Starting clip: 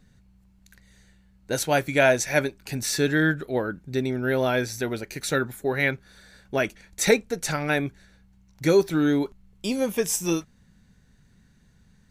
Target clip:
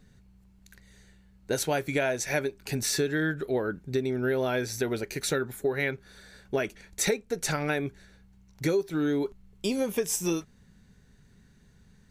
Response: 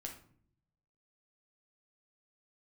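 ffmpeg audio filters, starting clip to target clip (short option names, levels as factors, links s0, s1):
-af "equalizer=f=410:t=o:w=0.26:g=6.5,acompressor=threshold=0.0631:ratio=6"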